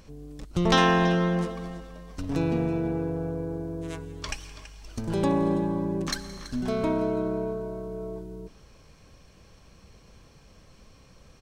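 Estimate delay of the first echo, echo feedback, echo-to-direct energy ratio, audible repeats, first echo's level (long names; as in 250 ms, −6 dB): 169 ms, repeats not evenly spaced, −22.0 dB, 1, −22.0 dB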